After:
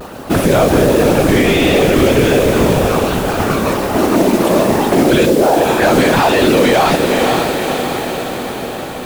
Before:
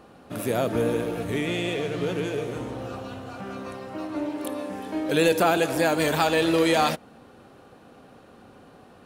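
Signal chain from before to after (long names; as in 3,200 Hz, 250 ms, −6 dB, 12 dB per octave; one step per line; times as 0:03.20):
0:05.24–0:05.82: resonant band-pass 230 Hz → 1,300 Hz, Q 2.6
random phases in short frames
noise that follows the level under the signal 15 dB
pitch vibrato 1.3 Hz 68 cents
on a send: feedback delay with all-pass diffusion 512 ms, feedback 63%, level −14.5 dB
on the sum: boost into a limiter +21.5 dB
slew-rate limiting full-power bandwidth 530 Hz
level −1 dB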